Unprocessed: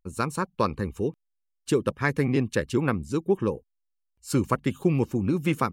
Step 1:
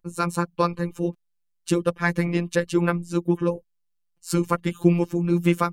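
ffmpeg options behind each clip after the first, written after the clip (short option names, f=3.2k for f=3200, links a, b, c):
-af "afftfilt=real='hypot(re,im)*cos(PI*b)':imag='0':win_size=1024:overlap=0.75,volume=6dB"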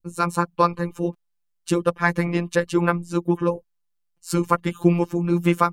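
-af "adynamicequalizer=threshold=0.0141:dfrequency=980:dqfactor=0.98:tfrequency=980:tqfactor=0.98:attack=5:release=100:ratio=0.375:range=3:mode=boostabove:tftype=bell"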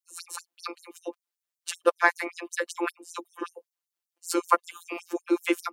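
-af "afftfilt=real='re*gte(b*sr/1024,230*pow(5800/230,0.5+0.5*sin(2*PI*5.2*pts/sr)))':imag='im*gte(b*sr/1024,230*pow(5800/230,0.5+0.5*sin(2*PI*5.2*pts/sr)))':win_size=1024:overlap=0.75"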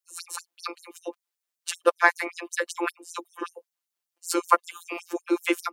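-af "lowshelf=f=190:g=-10.5,volume=2.5dB"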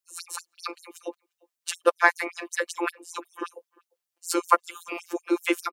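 -filter_complex "[0:a]asplit=2[a][b];[b]adelay=350,highpass=300,lowpass=3.4k,asoftclip=type=hard:threshold=-10dB,volume=-27dB[c];[a][c]amix=inputs=2:normalize=0"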